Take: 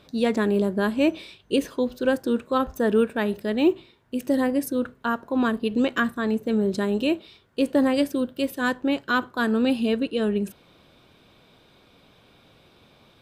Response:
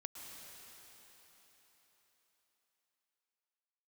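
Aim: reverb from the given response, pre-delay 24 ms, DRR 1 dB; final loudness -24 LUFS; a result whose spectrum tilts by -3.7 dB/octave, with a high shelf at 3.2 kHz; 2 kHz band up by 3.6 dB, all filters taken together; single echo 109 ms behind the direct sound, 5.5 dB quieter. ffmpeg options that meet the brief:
-filter_complex "[0:a]equalizer=f=2000:t=o:g=4,highshelf=f=3200:g=3.5,aecho=1:1:109:0.531,asplit=2[s0][s1];[1:a]atrim=start_sample=2205,adelay=24[s2];[s1][s2]afir=irnorm=-1:irlink=0,volume=1.26[s3];[s0][s3]amix=inputs=2:normalize=0,volume=0.631"

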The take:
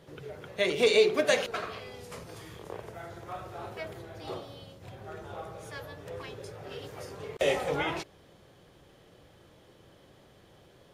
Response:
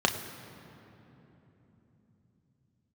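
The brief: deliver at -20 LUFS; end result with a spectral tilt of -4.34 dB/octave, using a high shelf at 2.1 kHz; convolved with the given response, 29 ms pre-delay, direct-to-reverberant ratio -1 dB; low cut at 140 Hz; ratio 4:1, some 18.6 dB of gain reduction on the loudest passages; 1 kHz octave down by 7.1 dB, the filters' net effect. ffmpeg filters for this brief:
-filter_complex "[0:a]highpass=140,equalizer=f=1000:t=o:g=-9,highshelf=f=2100:g=-5.5,acompressor=threshold=0.00708:ratio=4,asplit=2[s0][s1];[1:a]atrim=start_sample=2205,adelay=29[s2];[s1][s2]afir=irnorm=-1:irlink=0,volume=0.266[s3];[s0][s3]amix=inputs=2:normalize=0,volume=15"

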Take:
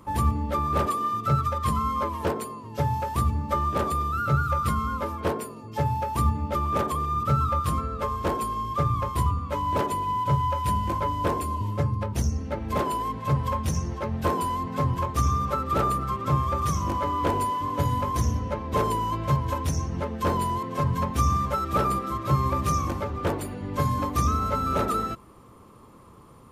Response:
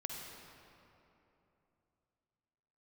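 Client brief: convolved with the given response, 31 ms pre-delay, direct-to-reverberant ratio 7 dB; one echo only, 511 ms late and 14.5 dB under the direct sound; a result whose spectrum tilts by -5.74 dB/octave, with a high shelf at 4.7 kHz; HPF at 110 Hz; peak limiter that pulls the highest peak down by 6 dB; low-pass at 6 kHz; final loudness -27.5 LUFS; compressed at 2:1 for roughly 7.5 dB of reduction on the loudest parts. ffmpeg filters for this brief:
-filter_complex "[0:a]highpass=110,lowpass=6000,highshelf=f=4700:g=4,acompressor=threshold=0.0224:ratio=2,alimiter=limit=0.0631:level=0:latency=1,aecho=1:1:511:0.188,asplit=2[s0][s1];[1:a]atrim=start_sample=2205,adelay=31[s2];[s1][s2]afir=irnorm=-1:irlink=0,volume=0.473[s3];[s0][s3]amix=inputs=2:normalize=0,volume=1.68"

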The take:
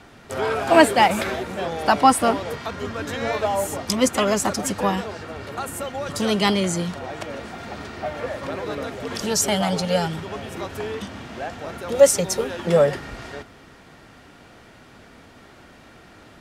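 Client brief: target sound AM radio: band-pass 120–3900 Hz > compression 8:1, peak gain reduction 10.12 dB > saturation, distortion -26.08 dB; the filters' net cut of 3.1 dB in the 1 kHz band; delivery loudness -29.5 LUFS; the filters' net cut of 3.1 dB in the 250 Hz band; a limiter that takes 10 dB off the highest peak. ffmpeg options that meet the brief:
-af "equalizer=f=250:t=o:g=-3.5,equalizer=f=1000:t=o:g=-4,alimiter=limit=0.211:level=0:latency=1,highpass=120,lowpass=3900,acompressor=threshold=0.0447:ratio=8,asoftclip=threshold=0.106,volume=1.5"

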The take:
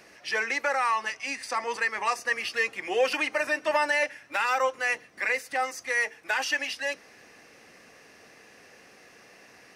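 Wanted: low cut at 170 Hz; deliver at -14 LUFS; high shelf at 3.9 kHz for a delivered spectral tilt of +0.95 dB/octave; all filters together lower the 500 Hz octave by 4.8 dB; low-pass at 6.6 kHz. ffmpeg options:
-af "highpass=170,lowpass=6600,equalizer=f=500:t=o:g=-5.5,highshelf=f=3900:g=6.5,volume=4.47"

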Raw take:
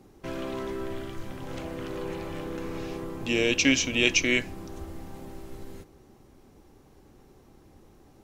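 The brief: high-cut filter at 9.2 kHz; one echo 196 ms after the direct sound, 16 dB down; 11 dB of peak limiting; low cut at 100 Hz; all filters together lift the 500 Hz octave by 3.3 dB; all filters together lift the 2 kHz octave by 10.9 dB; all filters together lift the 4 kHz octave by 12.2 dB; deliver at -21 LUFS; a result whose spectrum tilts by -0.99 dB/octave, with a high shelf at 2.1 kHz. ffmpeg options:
-af "highpass=100,lowpass=9200,equalizer=f=500:t=o:g=3.5,equalizer=f=2000:t=o:g=5.5,highshelf=f=2100:g=7.5,equalizer=f=4000:t=o:g=7.5,alimiter=limit=0.562:level=0:latency=1,aecho=1:1:196:0.158,volume=1.06"

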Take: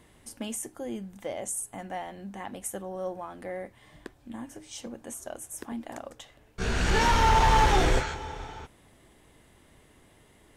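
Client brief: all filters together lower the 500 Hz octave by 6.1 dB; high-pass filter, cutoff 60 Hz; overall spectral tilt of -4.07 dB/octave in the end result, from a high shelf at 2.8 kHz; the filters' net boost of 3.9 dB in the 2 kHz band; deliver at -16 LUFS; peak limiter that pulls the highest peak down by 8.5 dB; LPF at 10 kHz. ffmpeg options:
-af "highpass=60,lowpass=10000,equalizer=f=500:t=o:g=-8,equalizer=f=2000:t=o:g=8,highshelf=f=2800:g=-7,volume=7.94,alimiter=limit=0.891:level=0:latency=1"

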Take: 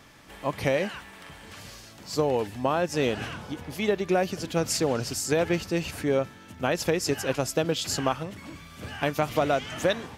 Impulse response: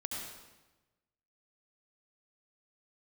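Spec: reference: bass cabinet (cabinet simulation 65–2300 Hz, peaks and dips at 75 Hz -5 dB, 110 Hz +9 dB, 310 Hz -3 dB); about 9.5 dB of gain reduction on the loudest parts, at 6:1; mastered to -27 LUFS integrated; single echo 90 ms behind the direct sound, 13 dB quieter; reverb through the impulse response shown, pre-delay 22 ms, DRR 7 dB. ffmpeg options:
-filter_complex "[0:a]acompressor=threshold=0.0316:ratio=6,aecho=1:1:90:0.224,asplit=2[s0][s1];[1:a]atrim=start_sample=2205,adelay=22[s2];[s1][s2]afir=irnorm=-1:irlink=0,volume=0.376[s3];[s0][s3]amix=inputs=2:normalize=0,highpass=f=65:w=0.5412,highpass=f=65:w=1.3066,equalizer=f=75:t=q:w=4:g=-5,equalizer=f=110:t=q:w=4:g=9,equalizer=f=310:t=q:w=4:g=-3,lowpass=f=2300:w=0.5412,lowpass=f=2300:w=1.3066,volume=2.66"

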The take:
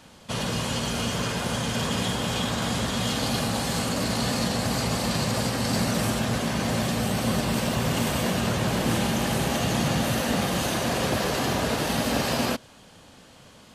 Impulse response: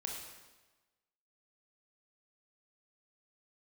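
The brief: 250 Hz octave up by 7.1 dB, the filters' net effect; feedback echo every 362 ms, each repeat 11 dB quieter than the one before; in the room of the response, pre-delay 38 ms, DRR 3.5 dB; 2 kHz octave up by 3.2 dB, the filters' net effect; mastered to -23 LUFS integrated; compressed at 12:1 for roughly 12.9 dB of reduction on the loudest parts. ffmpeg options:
-filter_complex "[0:a]equalizer=f=250:t=o:g=8.5,equalizer=f=2000:t=o:g=4,acompressor=threshold=0.0355:ratio=12,aecho=1:1:362|724|1086:0.282|0.0789|0.0221,asplit=2[s0][s1];[1:a]atrim=start_sample=2205,adelay=38[s2];[s1][s2]afir=irnorm=-1:irlink=0,volume=0.668[s3];[s0][s3]amix=inputs=2:normalize=0,volume=2.51"

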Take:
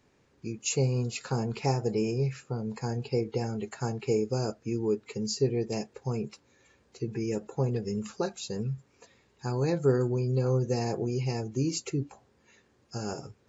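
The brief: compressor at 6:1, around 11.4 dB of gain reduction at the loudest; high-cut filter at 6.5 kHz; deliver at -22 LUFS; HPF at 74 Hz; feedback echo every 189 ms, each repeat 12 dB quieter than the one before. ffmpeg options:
-af "highpass=74,lowpass=6500,acompressor=threshold=0.0251:ratio=6,aecho=1:1:189|378|567:0.251|0.0628|0.0157,volume=5.96"

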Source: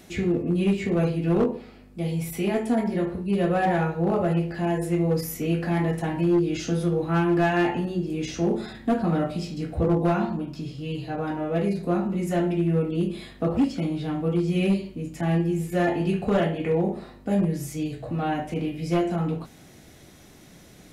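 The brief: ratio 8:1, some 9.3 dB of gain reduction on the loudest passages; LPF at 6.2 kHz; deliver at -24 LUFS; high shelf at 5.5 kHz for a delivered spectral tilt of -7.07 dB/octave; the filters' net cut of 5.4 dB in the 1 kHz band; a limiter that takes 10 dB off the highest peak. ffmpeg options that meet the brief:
-af "lowpass=6200,equalizer=f=1000:t=o:g=-8.5,highshelf=f=5500:g=-7.5,acompressor=threshold=0.0398:ratio=8,volume=3.98,alimiter=limit=0.158:level=0:latency=1"

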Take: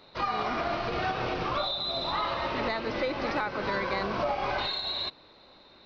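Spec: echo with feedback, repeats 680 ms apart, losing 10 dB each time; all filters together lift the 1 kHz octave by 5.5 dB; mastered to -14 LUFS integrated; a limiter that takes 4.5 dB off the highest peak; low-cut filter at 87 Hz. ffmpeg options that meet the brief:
-af "highpass=87,equalizer=f=1000:t=o:g=7,alimiter=limit=0.119:level=0:latency=1,aecho=1:1:680|1360|2040|2720:0.316|0.101|0.0324|0.0104,volume=5.01"

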